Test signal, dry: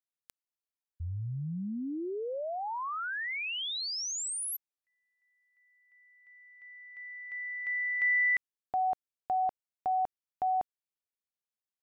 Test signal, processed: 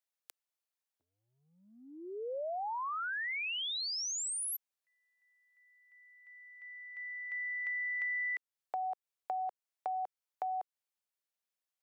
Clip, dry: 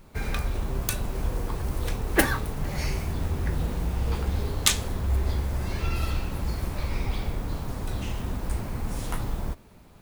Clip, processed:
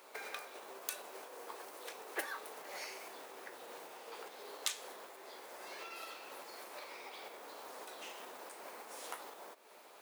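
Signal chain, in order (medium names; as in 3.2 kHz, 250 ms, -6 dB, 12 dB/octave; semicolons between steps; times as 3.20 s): compression 5:1, threshold -37 dBFS; high-pass 440 Hz 24 dB/octave; trim +1.5 dB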